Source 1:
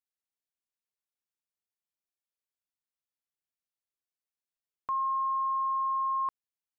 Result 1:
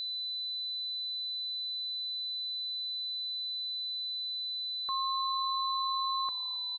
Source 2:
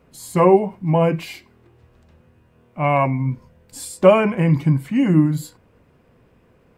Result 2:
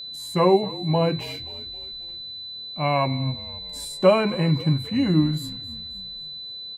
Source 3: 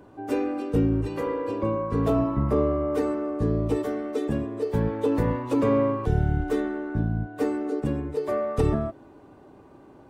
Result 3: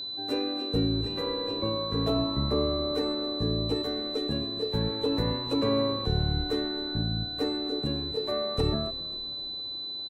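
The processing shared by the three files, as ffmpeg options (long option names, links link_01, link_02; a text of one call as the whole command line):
ffmpeg -i in.wav -filter_complex "[0:a]asplit=5[link_01][link_02][link_03][link_04][link_05];[link_02]adelay=266,afreqshift=-38,volume=-19dB[link_06];[link_03]adelay=532,afreqshift=-76,volume=-24.5dB[link_07];[link_04]adelay=798,afreqshift=-114,volume=-30dB[link_08];[link_05]adelay=1064,afreqshift=-152,volume=-35.5dB[link_09];[link_01][link_06][link_07][link_08][link_09]amix=inputs=5:normalize=0,aeval=exprs='val(0)+0.0355*sin(2*PI*4000*n/s)':channel_layout=same,volume=-4.5dB" out.wav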